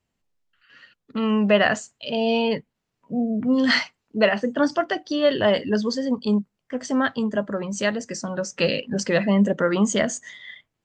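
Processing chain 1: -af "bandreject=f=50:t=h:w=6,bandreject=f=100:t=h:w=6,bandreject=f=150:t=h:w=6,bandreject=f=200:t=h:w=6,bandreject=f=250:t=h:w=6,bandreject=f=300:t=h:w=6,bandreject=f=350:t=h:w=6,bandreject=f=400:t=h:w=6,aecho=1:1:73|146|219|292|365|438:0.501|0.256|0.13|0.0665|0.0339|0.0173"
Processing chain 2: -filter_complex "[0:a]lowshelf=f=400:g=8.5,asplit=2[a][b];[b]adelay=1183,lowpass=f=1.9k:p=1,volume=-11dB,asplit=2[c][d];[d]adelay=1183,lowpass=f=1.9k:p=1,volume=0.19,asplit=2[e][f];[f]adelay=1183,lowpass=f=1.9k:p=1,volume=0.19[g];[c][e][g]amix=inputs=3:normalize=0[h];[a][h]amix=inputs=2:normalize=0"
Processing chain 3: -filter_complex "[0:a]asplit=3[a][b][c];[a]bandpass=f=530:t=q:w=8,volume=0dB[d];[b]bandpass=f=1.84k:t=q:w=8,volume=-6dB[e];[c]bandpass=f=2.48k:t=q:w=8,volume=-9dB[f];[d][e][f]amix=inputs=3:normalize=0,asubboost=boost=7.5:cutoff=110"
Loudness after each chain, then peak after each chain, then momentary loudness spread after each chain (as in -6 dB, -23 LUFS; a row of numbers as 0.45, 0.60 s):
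-22.0, -18.5, -33.5 LUFS; -4.0, -3.0, -15.5 dBFS; 10, 10, 14 LU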